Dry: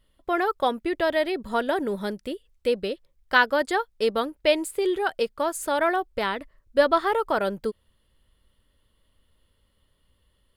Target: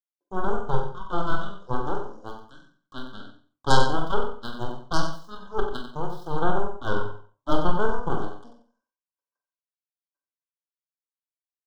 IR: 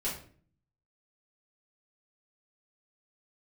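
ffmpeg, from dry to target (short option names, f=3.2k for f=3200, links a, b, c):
-filter_complex "[0:a]agate=range=-39dB:threshold=-58dB:ratio=16:detection=peak,highshelf=f=2.2k:g=-11,asetrate=23505,aresample=44100,highpass=f=430:w=0.5412,highpass=f=430:w=1.3066,equalizer=f=680:t=q:w=4:g=-7,equalizer=f=1.1k:t=q:w=4:g=9,equalizer=f=1.8k:t=q:w=4:g=4,equalizer=f=2.5k:t=q:w=4:g=7,equalizer=f=4.4k:t=q:w=4:g=-4,equalizer=f=6.8k:t=q:w=4:g=4,lowpass=f=8.7k:w=0.5412,lowpass=f=8.7k:w=1.3066,acrossover=split=830|4300[a][b][c];[c]aeval=exprs='(mod(398*val(0)+1,2)-1)/398':c=same[d];[a][b][d]amix=inputs=3:normalize=0,aeval=exprs='0.355*(cos(1*acos(clip(val(0)/0.355,-1,1)))-cos(1*PI/2))+0.1*(cos(2*acos(clip(val(0)/0.355,-1,1)))-cos(2*PI/2))+0.0562*(cos(3*acos(clip(val(0)/0.355,-1,1)))-cos(3*PI/2))+0.00501*(cos(5*acos(clip(val(0)/0.355,-1,1)))-cos(5*PI/2))+0.112*(cos(8*acos(clip(val(0)/0.355,-1,1)))-cos(8*PI/2))':c=same,aecho=1:1:153|306|459:0.376|0.0864|0.0199,asplit=2[e][f];[1:a]atrim=start_sample=2205,afade=t=out:st=0.26:d=0.01,atrim=end_sample=11907,adelay=48[g];[f][g]afir=irnorm=-1:irlink=0,volume=-7dB[h];[e][h]amix=inputs=2:normalize=0,atempo=1.7,asuperstop=centerf=2200:order=20:qfactor=1.6"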